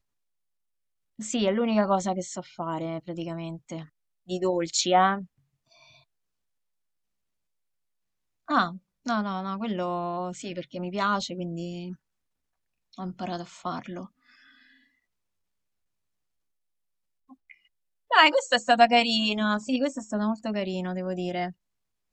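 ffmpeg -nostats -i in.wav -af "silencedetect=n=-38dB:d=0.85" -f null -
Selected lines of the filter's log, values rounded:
silence_start: 0.00
silence_end: 1.19 | silence_duration: 1.19
silence_start: 5.24
silence_end: 8.48 | silence_duration: 3.24
silence_start: 11.94
silence_end: 12.98 | silence_duration: 1.04
silence_start: 14.05
silence_end: 17.51 | silence_duration: 3.46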